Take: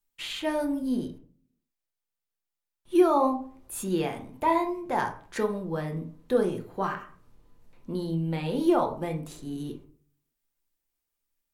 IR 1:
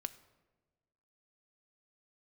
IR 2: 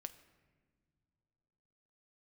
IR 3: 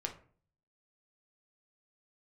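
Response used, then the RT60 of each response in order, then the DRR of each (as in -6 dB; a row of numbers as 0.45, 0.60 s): 3; 1.3 s, not exponential, 0.45 s; 10.5, 9.5, 2.5 dB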